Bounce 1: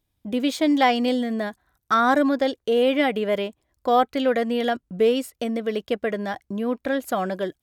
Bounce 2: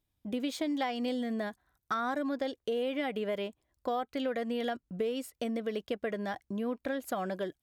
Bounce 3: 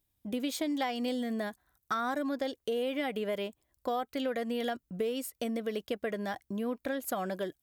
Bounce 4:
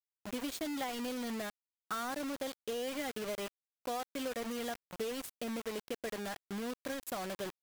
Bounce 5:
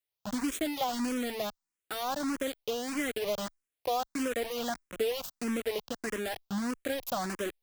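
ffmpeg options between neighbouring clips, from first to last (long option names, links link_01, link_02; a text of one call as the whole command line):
ffmpeg -i in.wav -af "acompressor=threshold=-23dB:ratio=6,volume=-6.5dB" out.wav
ffmpeg -i in.wav -af "highshelf=frequency=8300:gain=11.5" out.wav
ffmpeg -i in.wav -af "acrusher=bits=5:mix=0:aa=0.000001,volume=-6dB" out.wav
ffmpeg -i in.wav -filter_complex "[0:a]asplit=2[link_01][link_02];[link_02]afreqshift=1.6[link_03];[link_01][link_03]amix=inputs=2:normalize=1,volume=8.5dB" out.wav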